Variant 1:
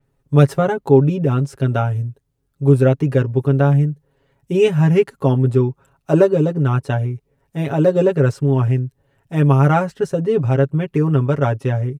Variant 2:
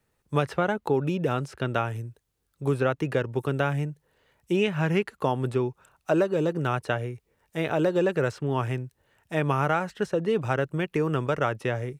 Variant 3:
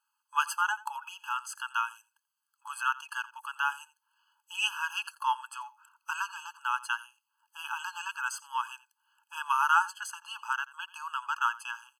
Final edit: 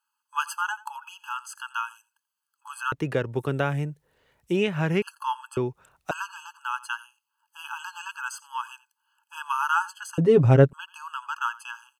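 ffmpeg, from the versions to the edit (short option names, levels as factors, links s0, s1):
-filter_complex "[1:a]asplit=2[s0][s1];[2:a]asplit=4[s2][s3][s4][s5];[s2]atrim=end=2.922[s6];[s0]atrim=start=2.918:end=5.022[s7];[s3]atrim=start=5.018:end=5.572[s8];[s1]atrim=start=5.568:end=6.112[s9];[s4]atrim=start=6.108:end=10.182[s10];[0:a]atrim=start=10.178:end=10.732[s11];[s5]atrim=start=10.728[s12];[s6][s7]acrossfade=d=0.004:c1=hsin:c2=hsin[s13];[s13][s8]acrossfade=d=0.004:c1=hsin:c2=hsin[s14];[s14][s9]acrossfade=d=0.004:c1=hsin:c2=hsin[s15];[s15][s10]acrossfade=d=0.004:c1=hsin:c2=hsin[s16];[s16][s11]acrossfade=d=0.004:c1=hsin:c2=hsin[s17];[s17][s12]acrossfade=d=0.004:c1=hsin:c2=hsin"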